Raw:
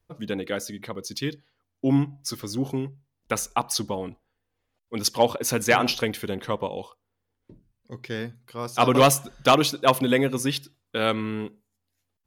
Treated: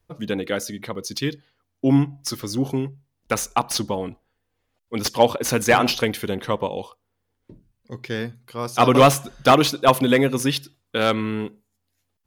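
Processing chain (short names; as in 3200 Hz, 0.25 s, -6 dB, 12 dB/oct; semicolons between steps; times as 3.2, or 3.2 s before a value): slew limiter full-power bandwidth 350 Hz; gain +4 dB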